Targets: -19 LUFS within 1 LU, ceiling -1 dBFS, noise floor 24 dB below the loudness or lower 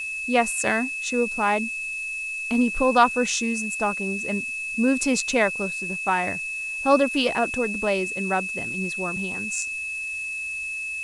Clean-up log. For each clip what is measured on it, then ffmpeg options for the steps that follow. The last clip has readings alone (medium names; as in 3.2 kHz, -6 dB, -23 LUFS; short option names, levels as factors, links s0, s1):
steady tone 2.6 kHz; tone level -28 dBFS; noise floor -31 dBFS; noise floor target -48 dBFS; loudness -24.0 LUFS; peak level -4.5 dBFS; loudness target -19.0 LUFS
-> -af "bandreject=f=2600:w=30"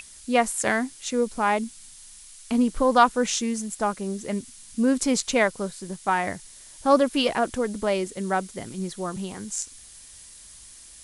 steady tone not found; noise floor -47 dBFS; noise floor target -49 dBFS
-> -af "afftdn=nr=6:nf=-47"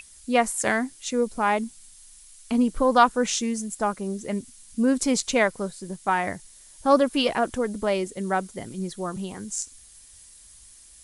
noise floor -50 dBFS; loudness -25.0 LUFS; peak level -5.0 dBFS; loudness target -19.0 LUFS
-> -af "volume=2,alimiter=limit=0.891:level=0:latency=1"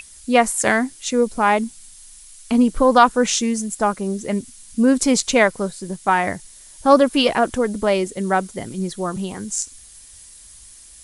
loudness -19.0 LUFS; peak level -1.0 dBFS; noise floor -44 dBFS